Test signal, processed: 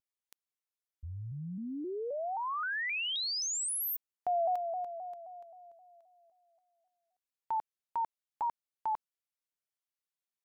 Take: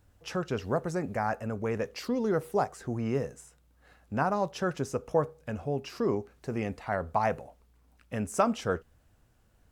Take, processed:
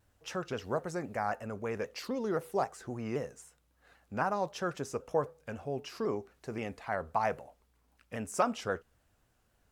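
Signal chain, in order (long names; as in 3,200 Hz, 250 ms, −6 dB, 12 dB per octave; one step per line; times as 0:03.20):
low-shelf EQ 320 Hz −7 dB
pitch modulation by a square or saw wave saw down 3.8 Hz, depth 100 cents
level −2 dB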